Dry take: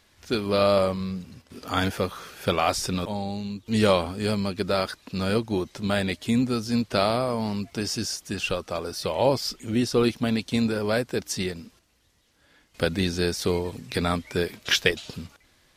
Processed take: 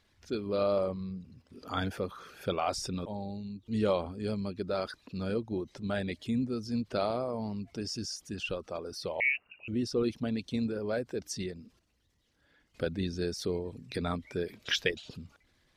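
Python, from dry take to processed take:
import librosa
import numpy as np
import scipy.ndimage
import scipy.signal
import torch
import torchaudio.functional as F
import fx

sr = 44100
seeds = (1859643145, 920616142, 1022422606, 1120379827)

y = fx.envelope_sharpen(x, sr, power=1.5)
y = fx.freq_invert(y, sr, carrier_hz=2800, at=(9.2, 9.68))
y = y * librosa.db_to_amplitude(-8.0)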